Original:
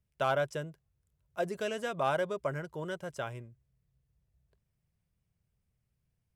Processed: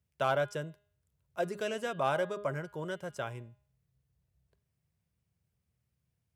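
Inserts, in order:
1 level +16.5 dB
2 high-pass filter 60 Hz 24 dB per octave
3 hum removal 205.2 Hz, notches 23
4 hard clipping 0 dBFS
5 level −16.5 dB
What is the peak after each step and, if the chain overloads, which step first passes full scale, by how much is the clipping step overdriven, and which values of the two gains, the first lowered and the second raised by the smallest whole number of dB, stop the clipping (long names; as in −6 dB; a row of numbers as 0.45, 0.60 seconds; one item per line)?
−3.5, −1.5, −1.5, −1.5, −18.0 dBFS
no step passes full scale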